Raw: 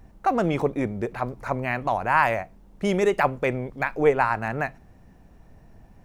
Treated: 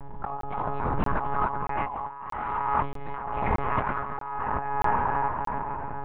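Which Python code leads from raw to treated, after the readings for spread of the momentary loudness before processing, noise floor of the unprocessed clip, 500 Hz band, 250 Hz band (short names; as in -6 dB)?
9 LU, -52 dBFS, -10.5 dB, -8.0 dB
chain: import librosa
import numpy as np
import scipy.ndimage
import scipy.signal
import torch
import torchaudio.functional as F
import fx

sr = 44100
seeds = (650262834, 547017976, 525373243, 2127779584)

p1 = fx.curve_eq(x, sr, hz=(210.0, 400.0, 970.0, 1700.0, 2600.0), db=(0, -13, 13, -4, -9))
p2 = p1 + fx.echo_diffused(p1, sr, ms=472, feedback_pct=47, wet_db=-15.0, dry=0)
p3 = fx.echo_pitch(p2, sr, ms=299, semitones=2, count=3, db_per_echo=-6.0)
p4 = fx.room_shoebox(p3, sr, seeds[0], volume_m3=1900.0, walls='mixed', distance_m=1.0)
p5 = fx.lpc_monotone(p4, sr, seeds[1], pitch_hz=140.0, order=8)
p6 = fx.hum_notches(p5, sr, base_hz=50, count=4)
p7 = fx.comb_fb(p6, sr, f0_hz=210.0, decay_s=0.53, harmonics='all', damping=0.0, mix_pct=60)
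p8 = fx.over_compress(p7, sr, threshold_db=-35.0, ratio=-1.0)
p9 = fx.buffer_crackle(p8, sr, first_s=0.41, period_s=0.63, block=1024, kind='zero')
p10 = fx.pre_swell(p9, sr, db_per_s=39.0)
y = F.gain(torch.from_numpy(p10), 4.5).numpy()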